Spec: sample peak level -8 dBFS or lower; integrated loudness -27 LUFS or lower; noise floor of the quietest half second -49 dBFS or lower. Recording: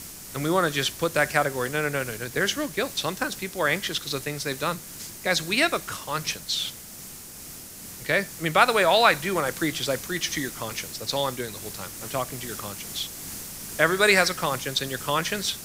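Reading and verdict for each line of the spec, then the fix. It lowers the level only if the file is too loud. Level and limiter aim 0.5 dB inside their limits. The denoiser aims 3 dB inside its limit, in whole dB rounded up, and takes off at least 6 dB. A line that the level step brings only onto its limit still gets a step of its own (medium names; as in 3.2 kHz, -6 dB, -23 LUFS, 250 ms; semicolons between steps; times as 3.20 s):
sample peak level -4.0 dBFS: fail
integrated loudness -25.0 LUFS: fail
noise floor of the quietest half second -42 dBFS: fail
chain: noise reduction 8 dB, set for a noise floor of -42 dBFS; trim -2.5 dB; peak limiter -8.5 dBFS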